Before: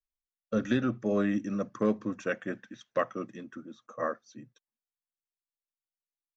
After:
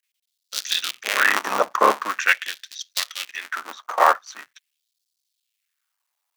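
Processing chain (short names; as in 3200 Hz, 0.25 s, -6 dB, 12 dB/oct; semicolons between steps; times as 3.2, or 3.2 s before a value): cycle switcher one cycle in 3, muted; LFO high-pass sine 0.44 Hz 850–4500 Hz; maximiser +19.5 dB; gain -1 dB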